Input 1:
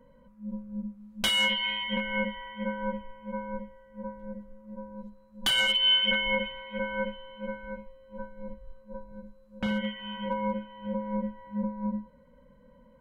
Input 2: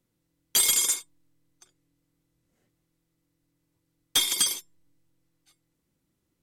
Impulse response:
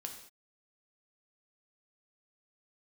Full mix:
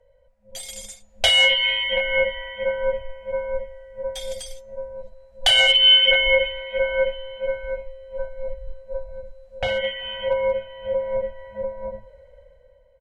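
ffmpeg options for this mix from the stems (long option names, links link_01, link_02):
-filter_complex "[0:a]dynaudnorm=framelen=170:gausssize=9:maxgain=12dB,volume=0dB[link_01];[1:a]bandreject=frequency=346.8:width_type=h:width=4,bandreject=frequency=693.6:width_type=h:width=4,bandreject=frequency=1040.4:width_type=h:width=4,bandreject=frequency=1387.2:width_type=h:width=4,bandreject=frequency=1734:width_type=h:width=4,bandreject=frequency=2080.8:width_type=h:width=4,bandreject=frequency=2427.6:width_type=h:width=4,bandreject=frequency=2774.4:width_type=h:width=4,bandreject=frequency=3121.2:width_type=h:width=4,bandreject=frequency=3468:width_type=h:width=4,bandreject=frequency=3814.8:width_type=h:width=4,bandreject=frequency=4161.6:width_type=h:width=4,bandreject=frequency=4508.4:width_type=h:width=4,bandreject=frequency=4855.2:width_type=h:width=4,bandreject=frequency=5202:width_type=h:width=4,bandreject=frequency=5548.8:width_type=h:width=4,bandreject=frequency=5895.6:width_type=h:width=4,bandreject=frequency=6242.4:width_type=h:width=4,bandreject=frequency=6589.2:width_type=h:width=4,bandreject=frequency=6936:width_type=h:width=4,bandreject=frequency=7282.8:width_type=h:width=4,volume=-10.5dB[link_02];[link_01][link_02]amix=inputs=2:normalize=0,firequalizer=gain_entry='entry(100,0);entry(190,-29);entry(300,-29);entry(440,-3);entry(710,10);entry(1000,-14);entry(1900,-1);entry(3800,-2);entry(8000,-4);entry(15000,-17)':delay=0.05:min_phase=1"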